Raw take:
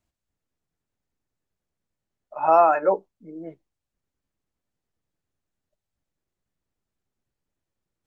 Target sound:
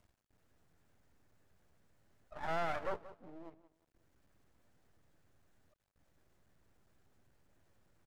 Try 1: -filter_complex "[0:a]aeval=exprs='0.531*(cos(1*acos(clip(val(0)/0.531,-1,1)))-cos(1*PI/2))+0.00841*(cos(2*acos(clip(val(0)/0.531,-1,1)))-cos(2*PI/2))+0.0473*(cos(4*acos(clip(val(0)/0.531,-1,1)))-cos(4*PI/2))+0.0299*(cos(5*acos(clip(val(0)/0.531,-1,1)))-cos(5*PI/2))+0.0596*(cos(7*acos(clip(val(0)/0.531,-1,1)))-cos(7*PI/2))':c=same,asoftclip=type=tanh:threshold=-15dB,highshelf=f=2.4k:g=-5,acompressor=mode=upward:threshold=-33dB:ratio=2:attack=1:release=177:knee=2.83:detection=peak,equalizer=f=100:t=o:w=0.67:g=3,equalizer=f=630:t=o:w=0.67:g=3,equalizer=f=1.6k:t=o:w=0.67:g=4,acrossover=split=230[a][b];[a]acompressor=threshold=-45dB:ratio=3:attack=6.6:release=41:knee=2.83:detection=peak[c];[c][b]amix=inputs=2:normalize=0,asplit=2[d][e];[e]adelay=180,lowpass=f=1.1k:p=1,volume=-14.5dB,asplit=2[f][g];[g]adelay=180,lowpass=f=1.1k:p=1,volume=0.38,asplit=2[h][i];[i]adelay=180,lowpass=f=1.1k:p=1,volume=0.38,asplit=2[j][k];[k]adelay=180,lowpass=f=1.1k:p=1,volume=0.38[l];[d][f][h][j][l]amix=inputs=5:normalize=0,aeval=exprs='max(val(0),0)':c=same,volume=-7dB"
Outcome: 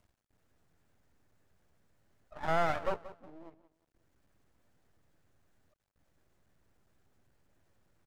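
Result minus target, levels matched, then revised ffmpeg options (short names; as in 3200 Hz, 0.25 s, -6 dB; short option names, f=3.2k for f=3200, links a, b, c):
soft clip: distortion -6 dB
-filter_complex "[0:a]aeval=exprs='0.531*(cos(1*acos(clip(val(0)/0.531,-1,1)))-cos(1*PI/2))+0.00841*(cos(2*acos(clip(val(0)/0.531,-1,1)))-cos(2*PI/2))+0.0473*(cos(4*acos(clip(val(0)/0.531,-1,1)))-cos(4*PI/2))+0.0299*(cos(5*acos(clip(val(0)/0.531,-1,1)))-cos(5*PI/2))+0.0596*(cos(7*acos(clip(val(0)/0.531,-1,1)))-cos(7*PI/2))':c=same,asoftclip=type=tanh:threshold=-24dB,highshelf=f=2.4k:g=-5,acompressor=mode=upward:threshold=-33dB:ratio=2:attack=1:release=177:knee=2.83:detection=peak,equalizer=f=100:t=o:w=0.67:g=3,equalizer=f=630:t=o:w=0.67:g=3,equalizer=f=1.6k:t=o:w=0.67:g=4,acrossover=split=230[a][b];[a]acompressor=threshold=-45dB:ratio=3:attack=6.6:release=41:knee=2.83:detection=peak[c];[c][b]amix=inputs=2:normalize=0,asplit=2[d][e];[e]adelay=180,lowpass=f=1.1k:p=1,volume=-14.5dB,asplit=2[f][g];[g]adelay=180,lowpass=f=1.1k:p=1,volume=0.38,asplit=2[h][i];[i]adelay=180,lowpass=f=1.1k:p=1,volume=0.38,asplit=2[j][k];[k]adelay=180,lowpass=f=1.1k:p=1,volume=0.38[l];[d][f][h][j][l]amix=inputs=5:normalize=0,aeval=exprs='max(val(0),0)':c=same,volume=-7dB"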